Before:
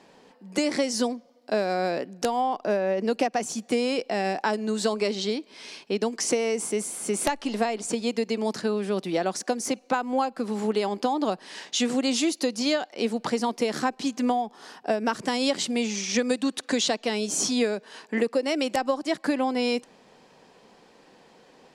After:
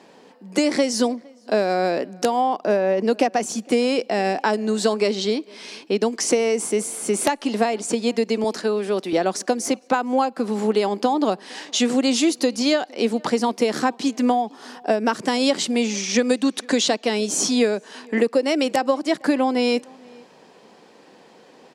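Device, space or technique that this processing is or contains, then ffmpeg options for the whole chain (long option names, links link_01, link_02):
filter by subtraction: -filter_complex "[0:a]asplit=2[link_01][link_02];[link_02]lowpass=270,volume=-1[link_03];[link_01][link_03]amix=inputs=2:normalize=0,asettb=1/sr,asplit=3[link_04][link_05][link_06];[link_04]atrim=end=8.444[link_07];[link_05]atrim=start=8.44:end=9.13,asetpts=PTS-STARTPTS,afade=type=in:duration=0.004:curve=qsin,afade=type=out:start_time=0.686:duration=0.004:curve=qsin,highpass=250[link_08];[link_06]atrim=start=9.126[link_09];[link_07][link_08]acrossfade=duration=0.004:curve1=hsin:curve2=qsin[link_10];[link_10][link_09]acrossfade=duration=0.004:curve1=qsin:curve2=hsin,asplit=2[link_11][link_12];[link_12]adelay=460.6,volume=-26dB,highshelf=frequency=4000:gain=-10.4[link_13];[link_11][link_13]amix=inputs=2:normalize=0,volume=4dB"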